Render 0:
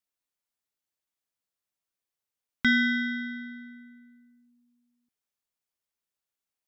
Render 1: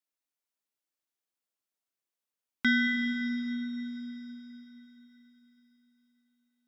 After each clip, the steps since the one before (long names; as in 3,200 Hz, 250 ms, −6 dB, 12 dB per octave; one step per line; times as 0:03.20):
low shelf with overshoot 180 Hz −7.5 dB, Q 1.5
on a send at −5 dB: convolution reverb RT60 4.4 s, pre-delay 115 ms
on the sum: level −3.5 dB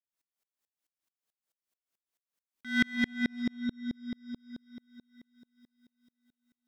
in parallel at −3 dB: gain into a clipping stage and back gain 31 dB
on the sum: tremolo with a ramp in dB swelling 4.6 Hz, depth 35 dB
level +4.5 dB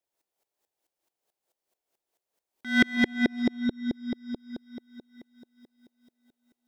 flat-topped bell 540 Hz +10 dB
level +5 dB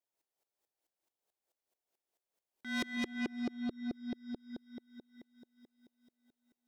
soft clipping −24 dBFS, distortion −7 dB
level −6.5 dB